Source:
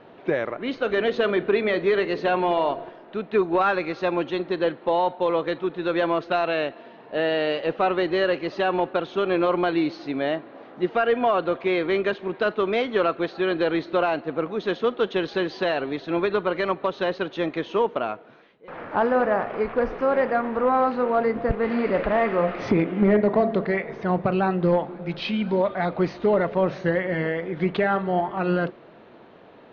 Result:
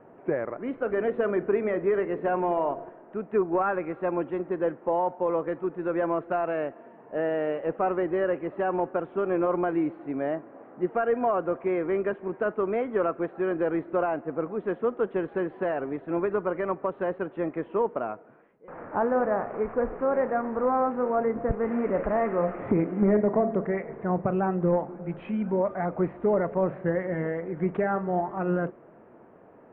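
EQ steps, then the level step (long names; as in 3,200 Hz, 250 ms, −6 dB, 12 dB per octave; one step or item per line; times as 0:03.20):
Bessel low-pass filter 1,300 Hz, order 8
−3.0 dB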